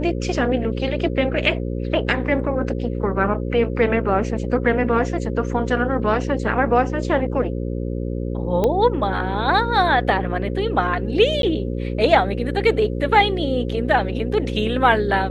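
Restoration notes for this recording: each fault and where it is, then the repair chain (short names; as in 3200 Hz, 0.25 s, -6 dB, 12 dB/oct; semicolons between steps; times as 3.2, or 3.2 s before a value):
buzz 60 Hz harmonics 9 -25 dBFS
8.64 pop -9 dBFS
11.42–11.43 gap 12 ms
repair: de-click; de-hum 60 Hz, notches 9; interpolate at 11.42, 12 ms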